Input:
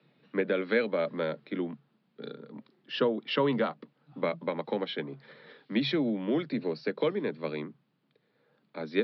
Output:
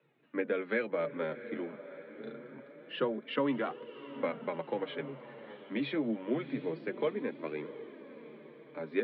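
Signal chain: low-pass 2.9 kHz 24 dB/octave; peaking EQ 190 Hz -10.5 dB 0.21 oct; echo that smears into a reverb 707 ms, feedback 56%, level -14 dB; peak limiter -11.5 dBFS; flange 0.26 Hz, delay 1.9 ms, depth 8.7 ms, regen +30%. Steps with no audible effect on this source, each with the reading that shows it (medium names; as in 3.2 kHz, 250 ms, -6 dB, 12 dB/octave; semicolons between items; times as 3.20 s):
peak limiter -11.5 dBFS: peak at its input -14.5 dBFS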